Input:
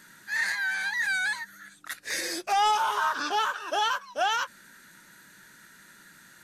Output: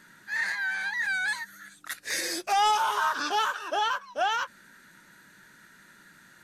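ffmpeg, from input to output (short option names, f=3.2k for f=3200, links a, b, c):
-af "asetnsamples=n=441:p=0,asendcmd='1.28 highshelf g 2;3.68 highshelf g -7',highshelf=f=4.2k:g=-8"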